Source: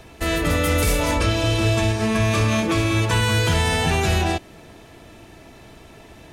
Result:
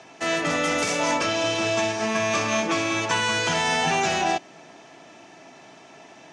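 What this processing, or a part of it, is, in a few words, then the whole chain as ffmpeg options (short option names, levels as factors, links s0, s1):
television speaker: -af "highpass=f=180:w=0.5412,highpass=f=180:w=1.3066,equalizer=f=210:t=q:w=4:g=-7,equalizer=f=330:t=q:w=4:g=-4,equalizer=f=460:t=q:w=4:g=-6,equalizer=f=760:t=q:w=4:g=4,equalizer=f=3900:t=q:w=4:g=-4,equalizer=f=6000:t=q:w=4:g=5,lowpass=f=7200:w=0.5412,lowpass=f=7200:w=1.3066"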